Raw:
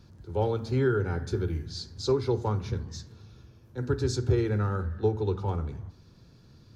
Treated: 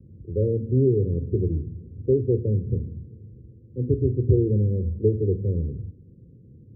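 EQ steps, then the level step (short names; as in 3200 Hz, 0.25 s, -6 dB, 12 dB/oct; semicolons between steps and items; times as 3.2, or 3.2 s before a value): HPF 140 Hz 6 dB/oct; steep low-pass 540 Hz 96 dB/oct; low shelf 230 Hz +10 dB; +2.5 dB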